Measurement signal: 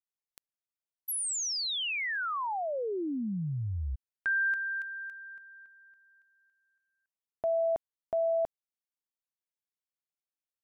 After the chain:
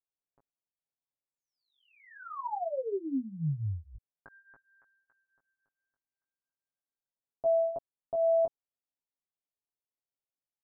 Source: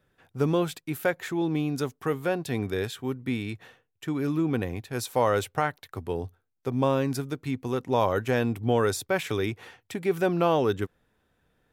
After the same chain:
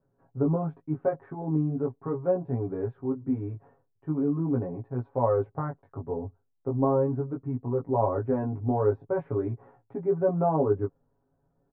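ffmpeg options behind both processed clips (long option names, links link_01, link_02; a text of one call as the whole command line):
ffmpeg -i in.wav -af "lowpass=frequency=1000:width=0.5412,lowpass=frequency=1000:width=1.3066,flanger=delay=16.5:depth=3.4:speed=0.41,aecho=1:1:7.3:0.84" out.wav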